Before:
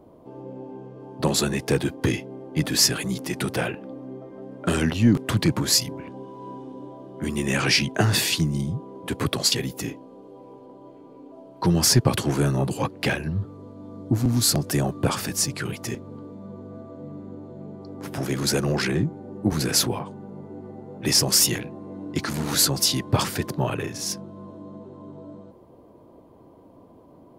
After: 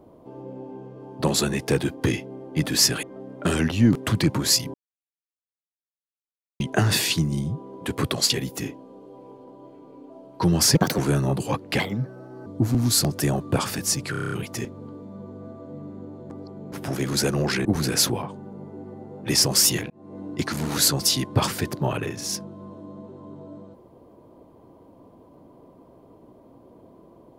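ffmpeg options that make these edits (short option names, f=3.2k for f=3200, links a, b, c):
-filter_complex "[0:a]asplit=19[a][b][c][d][e][f][g][h][i][j][k][l][m][n][o][p][q][r][s];[a]atrim=end=3.032[t];[b]atrim=start=4.248:end=5.96,asetpts=PTS-STARTPTS,afade=t=out:st=1.708:d=0.004:c=hsin[u];[c]atrim=start=5.96:end=7.82,asetpts=PTS-STARTPTS,volume=0[v];[d]atrim=start=7.82:end=11.974,asetpts=PTS-STARTPTS,afade=t=in:d=0.004:c=hsin[w];[e]atrim=start=11.97:end=12.29,asetpts=PTS-STARTPTS,asetrate=60858,aresample=44100,atrim=end_sample=10226,asetpts=PTS-STARTPTS[x];[f]atrim=start=12.286:end=13.104[y];[g]atrim=start=13.1:end=13.97,asetpts=PTS-STARTPTS,asetrate=57330,aresample=44100,atrim=end_sample=29513,asetpts=PTS-STARTPTS[z];[h]atrim=start=13.966:end=15.652[aa];[i]atrim=start=15.618:end=15.652[ab];[j]atrim=start=15.618:end=15.652[ac];[k]atrim=start=15.618:end=15.652[ad];[l]atrim=start=15.618:end=15.652[ae];[m]atrim=start=15.618:end=15.652[af];[n]atrim=start=15.618:end=15.652[ag];[o]atrim=start=15.618:end=17.602[ah];[p]atrim=start=17.598:end=18.022,asetpts=PTS-STARTPTS,areverse[ai];[q]atrim=start=18.018:end=18.952[aj];[r]atrim=start=19.418:end=21.67,asetpts=PTS-STARTPTS,afade=t=out:st=2.248:d=0.004:c=hsin[ak];[s]atrim=start=21.67,asetpts=PTS-STARTPTS,afade=t=in:d=0.29[al];[u][v][w]concat=n=3:v=0:a=1[am];[t][am]acrossfade=d=0.004:c1=hsin:c2=hsin[an];[an][x]acrossfade=d=0.004:c1=hsin:c2=hsin[ao];[ao][y]acrossfade=d=0.004:c1=hsin:c2=hsin[ap];[ap][z]acrossfade=d=0.004:c1=hsin:c2=hsin[aq];[aq][aa]acrossfade=d=0.004:c1=hsin:c2=hsin[ar];[ar][ab]acrossfade=d=0.004:c1=hsin:c2=hsin[as];[as][ac]acrossfade=d=0.004:c1=hsin:c2=hsin[at];[at][ad]acrossfade=d=0.004:c1=hsin:c2=hsin[au];[au][ae]acrossfade=d=0.004:c1=hsin:c2=hsin[av];[av][af]acrossfade=d=0.004:c1=hsin:c2=hsin[aw];[aw][ag]acrossfade=d=0.004:c1=hsin:c2=hsin[ax];[ax][ah]acrossfade=d=0.004:c1=hsin:c2=hsin[ay];[ay][ai]acrossfade=d=0.004:c1=hsin:c2=hsin[az];[az][aj]acrossfade=d=0.004:c1=hsin:c2=hsin[ba];[ak][al]concat=n=2:v=0:a=1[bb];[ba][bb]acrossfade=d=0.004:c1=hsin:c2=hsin"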